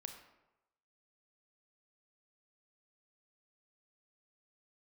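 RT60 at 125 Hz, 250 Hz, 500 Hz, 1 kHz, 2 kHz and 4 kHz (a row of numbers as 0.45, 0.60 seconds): 0.95, 0.80, 0.95, 1.0, 0.80, 0.55 seconds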